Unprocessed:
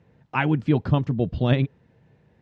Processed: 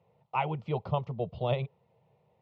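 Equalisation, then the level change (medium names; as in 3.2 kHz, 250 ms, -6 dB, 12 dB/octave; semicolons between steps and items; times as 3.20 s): band-pass 100–2000 Hz; tilt EQ +2.5 dB/octave; static phaser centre 680 Hz, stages 4; 0.0 dB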